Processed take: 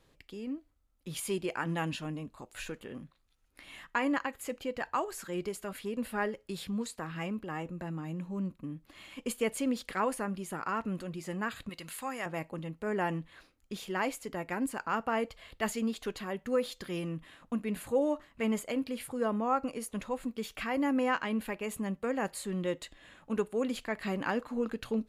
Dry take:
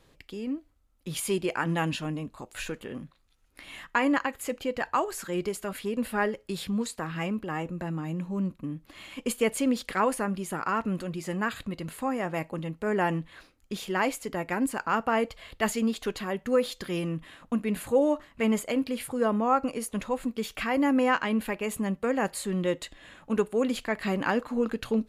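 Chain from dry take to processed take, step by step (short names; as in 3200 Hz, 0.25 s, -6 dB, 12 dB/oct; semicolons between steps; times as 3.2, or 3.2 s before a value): 11.69–12.26 tilt shelf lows -8 dB; gain -5.5 dB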